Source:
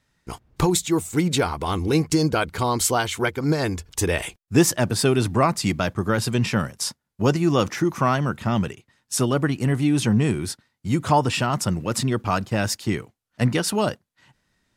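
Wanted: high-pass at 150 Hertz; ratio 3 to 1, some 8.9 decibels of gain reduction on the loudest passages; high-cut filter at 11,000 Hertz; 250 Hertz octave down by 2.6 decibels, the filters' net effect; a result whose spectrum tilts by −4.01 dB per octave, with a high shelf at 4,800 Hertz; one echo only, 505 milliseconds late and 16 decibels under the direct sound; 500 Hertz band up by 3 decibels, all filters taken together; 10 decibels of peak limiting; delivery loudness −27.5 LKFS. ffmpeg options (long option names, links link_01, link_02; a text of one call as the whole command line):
ffmpeg -i in.wav -af "highpass=150,lowpass=11000,equalizer=frequency=250:width_type=o:gain=-5,equalizer=frequency=500:width_type=o:gain=5.5,highshelf=frequency=4800:gain=3.5,acompressor=threshold=-24dB:ratio=3,alimiter=limit=-20dB:level=0:latency=1,aecho=1:1:505:0.158,volume=3.5dB" out.wav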